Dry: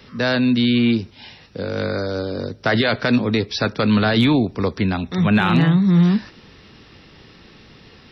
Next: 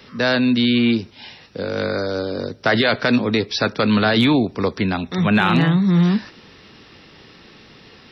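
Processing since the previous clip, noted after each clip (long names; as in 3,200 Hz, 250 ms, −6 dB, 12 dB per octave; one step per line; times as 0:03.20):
low-shelf EQ 130 Hz −9 dB
level +2 dB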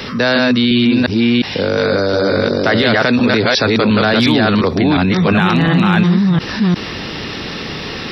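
delay that plays each chunk backwards 355 ms, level 0 dB
in parallel at +3 dB: brickwall limiter −11.5 dBFS, peak gain reduction 9 dB
on the sum: envelope flattener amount 50%
level −5 dB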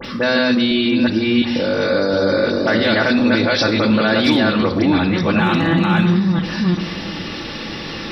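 all-pass dispersion highs, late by 51 ms, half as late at 2,900 Hz
on a send at −4 dB: convolution reverb RT60 1.3 s, pre-delay 3 ms
on the sum: level −4.5 dB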